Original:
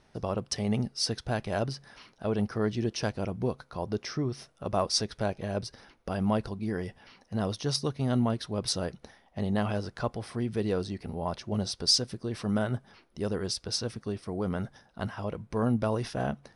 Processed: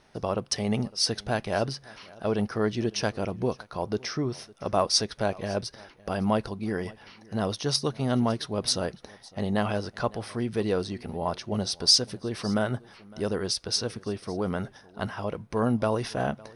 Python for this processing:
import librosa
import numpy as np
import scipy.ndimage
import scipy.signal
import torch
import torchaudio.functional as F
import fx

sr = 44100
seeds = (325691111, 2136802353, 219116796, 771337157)

y = fx.low_shelf(x, sr, hz=230.0, db=-6.0)
y = fx.notch(y, sr, hz=7500.0, q=11.0)
y = y + 10.0 ** (-23.0 / 20.0) * np.pad(y, (int(558 * sr / 1000.0), 0))[:len(y)]
y = F.gain(torch.from_numpy(y), 4.5).numpy()